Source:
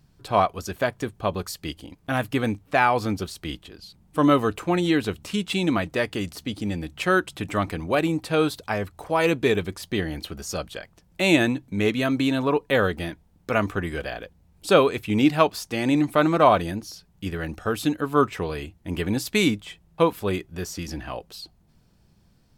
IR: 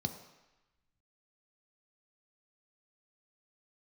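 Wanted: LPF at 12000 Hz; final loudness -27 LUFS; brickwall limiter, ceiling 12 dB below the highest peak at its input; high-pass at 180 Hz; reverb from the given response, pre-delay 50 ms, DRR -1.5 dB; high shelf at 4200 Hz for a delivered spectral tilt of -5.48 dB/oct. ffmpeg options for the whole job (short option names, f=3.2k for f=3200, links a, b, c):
-filter_complex "[0:a]highpass=180,lowpass=12k,highshelf=f=4.2k:g=8,alimiter=limit=-13dB:level=0:latency=1,asplit=2[a][b];[1:a]atrim=start_sample=2205,adelay=50[c];[b][c]afir=irnorm=-1:irlink=0,volume=0dB[d];[a][d]amix=inputs=2:normalize=0,volume=-7dB"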